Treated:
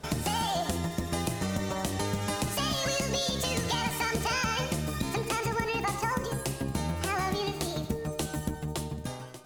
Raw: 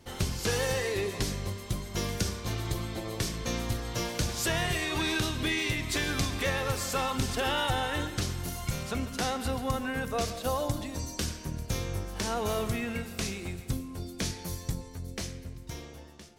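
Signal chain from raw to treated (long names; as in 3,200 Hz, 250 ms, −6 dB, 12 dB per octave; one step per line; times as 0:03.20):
high-shelf EQ 12,000 Hz +7 dB
downward compressor 2.5 to 1, threshold −33 dBFS, peak gain reduction 6.5 dB
high-frequency loss of the air 80 metres
wrong playback speed 45 rpm record played at 78 rpm
level +5.5 dB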